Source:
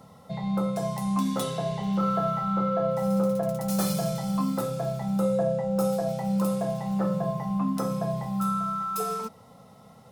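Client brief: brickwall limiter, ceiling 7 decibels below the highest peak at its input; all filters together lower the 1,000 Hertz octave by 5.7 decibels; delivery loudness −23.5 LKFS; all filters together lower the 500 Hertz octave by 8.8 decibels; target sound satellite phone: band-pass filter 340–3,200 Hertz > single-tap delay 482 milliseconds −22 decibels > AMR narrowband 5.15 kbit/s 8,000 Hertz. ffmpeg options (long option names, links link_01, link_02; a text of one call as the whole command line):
ffmpeg -i in.wav -af "equalizer=frequency=500:width_type=o:gain=-7.5,equalizer=frequency=1000:width_type=o:gain=-6.5,alimiter=limit=-22.5dB:level=0:latency=1,highpass=340,lowpass=3200,aecho=1:1:482:0.0794,volume=15.5dB" -ar 8000 -c:a libopencore_amrnb -b:a 5150 out.amr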